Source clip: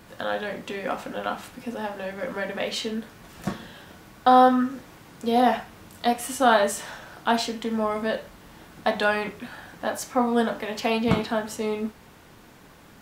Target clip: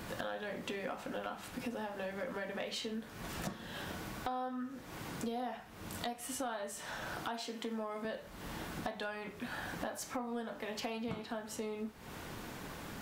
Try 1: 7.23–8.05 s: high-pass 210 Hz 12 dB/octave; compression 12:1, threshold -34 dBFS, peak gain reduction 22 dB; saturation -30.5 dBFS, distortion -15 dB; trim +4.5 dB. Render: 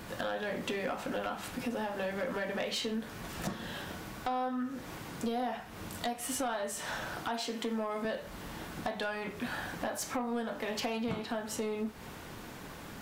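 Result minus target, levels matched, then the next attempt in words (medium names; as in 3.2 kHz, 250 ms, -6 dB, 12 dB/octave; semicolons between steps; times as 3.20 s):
compression: peak gain reduction -6.5 dB
7.23–8.05 s: high-pass 210 Hz 12 dB/octave; compression 12:1, threshold -41 dBFS, peak gain reduction 28.5 dB; saturation -30.5 dBFS, distortion -22 dB; trim +4.5 dB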